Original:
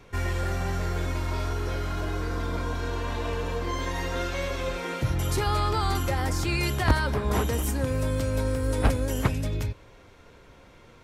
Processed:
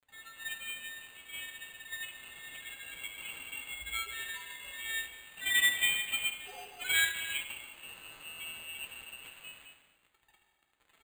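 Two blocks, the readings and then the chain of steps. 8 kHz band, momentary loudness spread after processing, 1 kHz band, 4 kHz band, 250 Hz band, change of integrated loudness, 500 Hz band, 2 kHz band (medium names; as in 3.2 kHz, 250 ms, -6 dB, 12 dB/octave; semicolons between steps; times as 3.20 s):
-0.5 dB, 18 LU, -20.5 dB, +1.5 dB, -30.5 dB, -6.0 dB, -28.5 dB, +1.0 dB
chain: band-stop 2 kHz, Q 11; spectral gate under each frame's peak -15 dB strong; high-pass 870 Hz 6 dB/octave; peaking EQ 2.2 kHz -10.5 dB 0.63 oct; comb 6.4 ms, depth 72%; loudest bins only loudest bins 8; companded quantiser 4-bit; gated-style reverb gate 490 ms falling, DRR -0.5 dB; frequency inversion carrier 3.2 kHz; careless resampling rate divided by 8×, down filtered, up hold; upward expansion 1.5:1, over -39 dBFS; trim +1.5 dB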